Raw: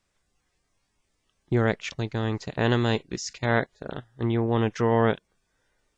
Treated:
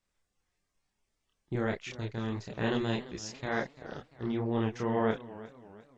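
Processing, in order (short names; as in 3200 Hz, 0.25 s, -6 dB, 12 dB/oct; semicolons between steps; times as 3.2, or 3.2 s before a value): chorus voices 4, 1.4 Hz, delay 29 ms, depth 3 ms; warbling echo 0.344 s, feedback 43%, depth 131 cents, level -17 dB; gain -5 dB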